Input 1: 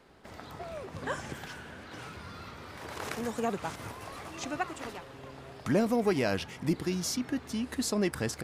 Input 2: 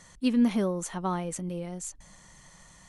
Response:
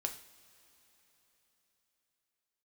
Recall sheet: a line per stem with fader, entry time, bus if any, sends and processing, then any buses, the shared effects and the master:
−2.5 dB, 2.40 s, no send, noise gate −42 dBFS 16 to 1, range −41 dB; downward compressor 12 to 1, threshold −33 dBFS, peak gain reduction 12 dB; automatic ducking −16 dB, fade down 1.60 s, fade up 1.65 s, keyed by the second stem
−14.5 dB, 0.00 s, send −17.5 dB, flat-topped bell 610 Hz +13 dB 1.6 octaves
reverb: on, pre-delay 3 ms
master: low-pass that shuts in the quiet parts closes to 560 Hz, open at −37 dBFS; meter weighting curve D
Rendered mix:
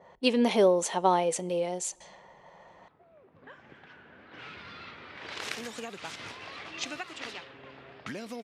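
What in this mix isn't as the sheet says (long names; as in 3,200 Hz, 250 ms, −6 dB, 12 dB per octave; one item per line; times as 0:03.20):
stem 1: missing noise gate −42 dBFS 16 to 1, range −41 dB
stem 2 −14.5 dB → −3.0 dB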